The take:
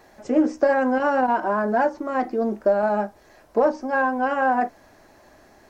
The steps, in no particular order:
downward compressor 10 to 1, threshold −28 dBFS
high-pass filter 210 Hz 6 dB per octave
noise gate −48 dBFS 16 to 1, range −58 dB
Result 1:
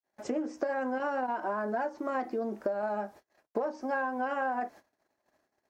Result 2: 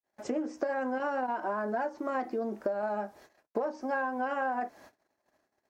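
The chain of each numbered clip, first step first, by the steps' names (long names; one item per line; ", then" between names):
downward compressor, then noise gate, then high-pass filter
noise gate, then downward compressor, then high-pass filter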